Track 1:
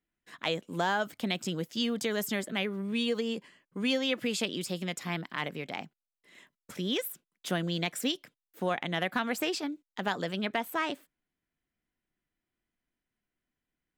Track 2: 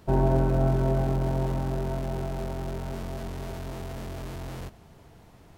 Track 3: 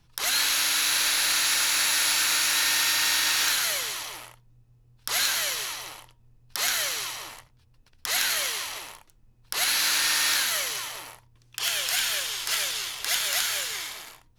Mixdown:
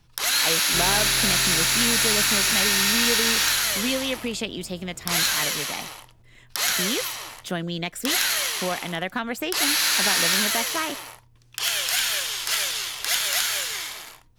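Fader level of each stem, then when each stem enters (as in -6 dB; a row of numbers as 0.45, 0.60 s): +2.5, -11.5, +2.5 dB; 0.00, 0.65, 0.00 s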